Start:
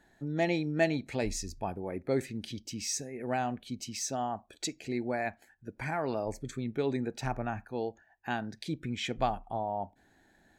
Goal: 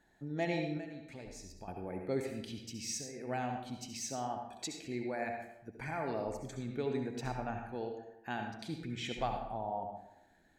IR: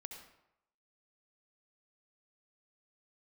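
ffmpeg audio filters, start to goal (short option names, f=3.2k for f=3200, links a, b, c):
-filter_complex "[0:a]asettb=1/sr,asplit=3[a][b][c];[a]atrim=end=0.774[d];[b]atrim=start=0.77:end=1.68,asetpts=PTS-STARTPTS,afade=t=in:d=0.004:c=qsin,afade=t=out:st=0.906:d=0.004:c=qsin,acompressor=threshold=-41dB:ratio=6[e];[c]atrim=start=1.676[f];[d][e]acrossfade=d=0.004:c1=hsin:c2=qsin[g];[g][f]acrossfade=d=0.004:c1=qsin:c2=hsin[h];[1:a]atrim=start_sample=2205[i];[h][i]afir=irnorm=-1:irlink=0"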